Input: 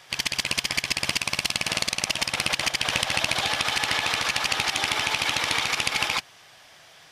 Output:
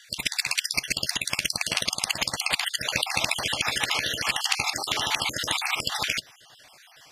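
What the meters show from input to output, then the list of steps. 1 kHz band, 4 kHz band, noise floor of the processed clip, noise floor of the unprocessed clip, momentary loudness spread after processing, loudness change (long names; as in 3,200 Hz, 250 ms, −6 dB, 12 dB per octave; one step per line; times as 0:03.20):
−2.5 dB, −1.5 dB, −54 dBFS, −52 dBFS, 2 LU, −1.5 dB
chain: time-frequency cells dropped at random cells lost 45%
high-shelf EQ 5,600 Hz +5 dB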